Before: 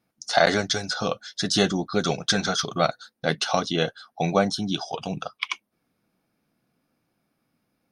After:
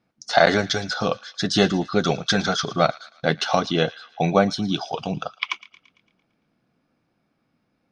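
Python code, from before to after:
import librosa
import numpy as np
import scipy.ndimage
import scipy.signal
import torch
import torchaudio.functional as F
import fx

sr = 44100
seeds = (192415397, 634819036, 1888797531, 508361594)

p1 = fx.air_absorb(x, sr, metres=96.0)
p2 = p1 + fx.echo_wet_highpass(p1, sr, ms=113, feedback_pct=53, hz=1500.0, wet_db=-18.0, dry=0)
y = p2 * librosa.db_to_amplitude(3.5)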